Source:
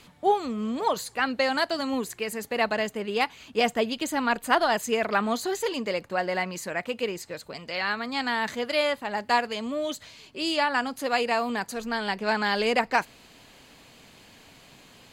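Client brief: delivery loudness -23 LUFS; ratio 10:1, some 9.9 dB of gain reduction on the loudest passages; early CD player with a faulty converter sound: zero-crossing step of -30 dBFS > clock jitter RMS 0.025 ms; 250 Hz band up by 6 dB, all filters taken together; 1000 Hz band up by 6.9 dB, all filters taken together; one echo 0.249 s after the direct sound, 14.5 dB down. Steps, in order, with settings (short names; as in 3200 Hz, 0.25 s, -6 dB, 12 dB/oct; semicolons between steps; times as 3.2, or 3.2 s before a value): bell 250 Hz +6.5 dB; bell 1000 Hz +8.5 dB; compressor 10:1, threshold -21 dBFS; echo 0.249 s -14.5 dB; zero-crossing step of -30 dBFS; clock jitter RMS 0.025 ms; gain +2 dB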